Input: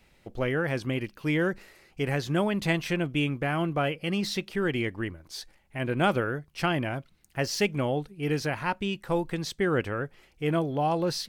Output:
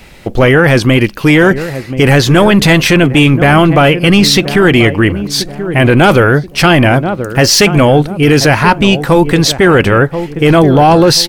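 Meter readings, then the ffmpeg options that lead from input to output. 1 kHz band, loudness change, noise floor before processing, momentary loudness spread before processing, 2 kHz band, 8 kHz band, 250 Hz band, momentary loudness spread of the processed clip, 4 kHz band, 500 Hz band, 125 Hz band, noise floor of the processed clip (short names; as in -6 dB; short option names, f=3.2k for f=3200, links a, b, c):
+20.0 dB, +20.5 dB, -63 dBFS, 9 LU, +20.5 dB, +24.0 dB, +20.5 dB, 6 LU, +23.0 dB, +20.0 dB, +21.5 dB, -27 dBFS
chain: -filter_complex "[0:a]asplit=2[a][b];[b]adelay=1031,lowpass=f=840:p=1,volume=-14dB,asplit=2[c][d];[d]adelay=1031,lowpass=f=840:p=1,volume=0.42,asplit=2[e][f];[f]adelay=1031,lowpass=f=840:p=1,volume=0.42,asplit=2[g][h];[h]adelay=1031,lowpass=f=840:p=1,volume=0.42[i];[a][c][e][g][i]amix=inputs=5:normalize=0,apsyclip=26dB,volume=-1.5dB"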